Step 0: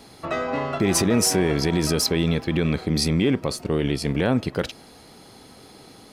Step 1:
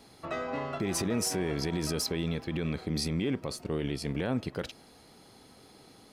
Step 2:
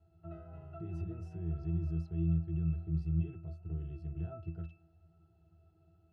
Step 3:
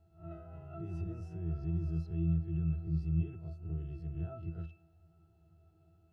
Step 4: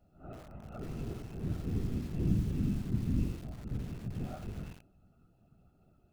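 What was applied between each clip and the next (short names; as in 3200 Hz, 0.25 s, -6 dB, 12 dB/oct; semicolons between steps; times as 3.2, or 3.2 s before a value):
limiter -12.5 dBFS, peak gain reduction 3.5 dB; gain -8.5 dB
resonant low shelf 160 Hz +8 dB, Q 3; octave resonator E, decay 0.27 s
spectral swells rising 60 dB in 0.33 s; on a send at -20 dB: reverb RT60 0.60 s, pre-delay 44 ms
whisperiser; lo-fi delay 87 ms, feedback 35%, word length 8-bit, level -5.5 dB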